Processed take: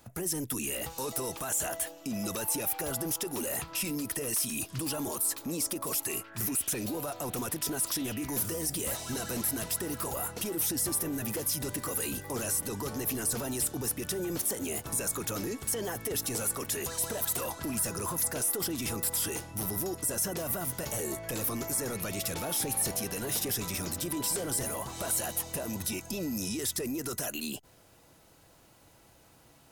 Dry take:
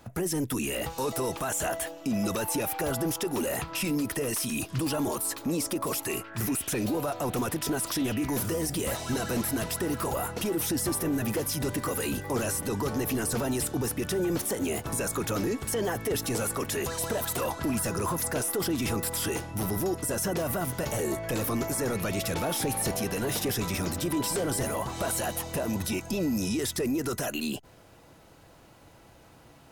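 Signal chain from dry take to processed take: high shelf 4700 Hz +10 dB; gain -6.5 dB

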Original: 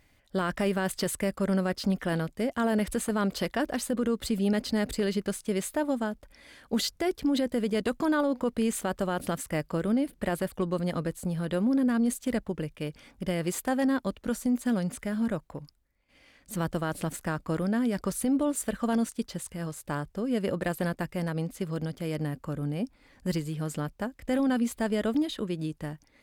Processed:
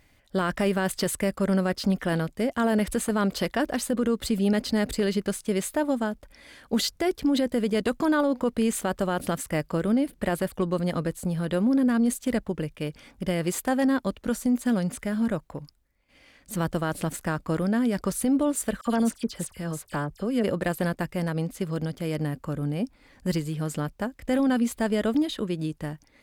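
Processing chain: 18.81–20.44 dispersion lows, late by 49 ms, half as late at 2600 Hz; gain +3 dB

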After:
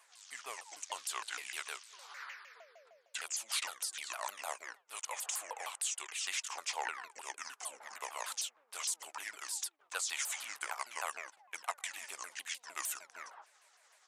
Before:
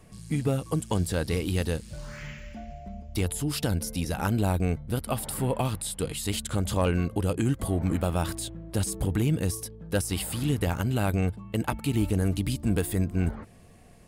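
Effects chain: repeated pitch sweeps -8.5 st, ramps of 0.153 s; HPF 850 Hz 24 dB/oct; gain -1.5 dB

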